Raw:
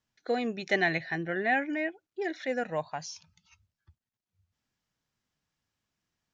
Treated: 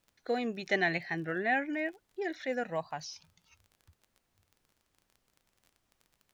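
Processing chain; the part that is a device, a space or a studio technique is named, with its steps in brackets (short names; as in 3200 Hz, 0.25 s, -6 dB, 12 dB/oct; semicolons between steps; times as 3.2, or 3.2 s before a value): warped LP (record warp 33 1/3 rpm, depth 100 cents; crackle 23/s -44 dBFS; pink noise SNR 41 dB); gain -2.5 dB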